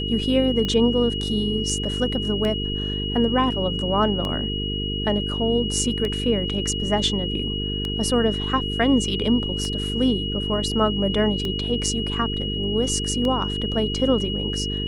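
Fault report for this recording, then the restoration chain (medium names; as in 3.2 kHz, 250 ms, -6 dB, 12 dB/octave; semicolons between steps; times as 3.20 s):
buzz 50 Hz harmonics 9 -28 dBFS
tick 33 1/3 rpm -14 dBFS
whine 2.9 kHz -28 dBFS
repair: de-click; band-stop 2.9 kHz, Q 30; de-hum 50 Hz, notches 9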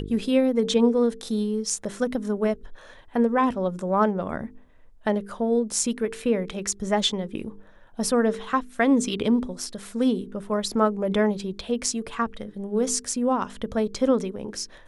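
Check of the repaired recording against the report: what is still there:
nothing left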